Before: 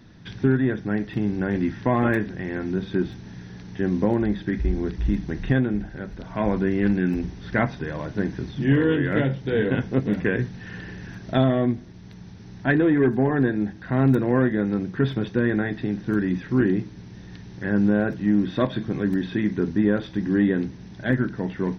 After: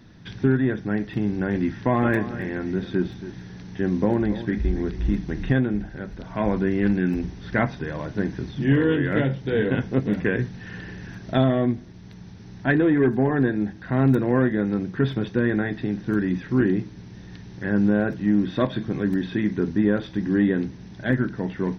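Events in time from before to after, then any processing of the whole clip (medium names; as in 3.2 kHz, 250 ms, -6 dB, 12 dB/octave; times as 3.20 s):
1.80–5.53 s: delay 277 ms -13.5 dB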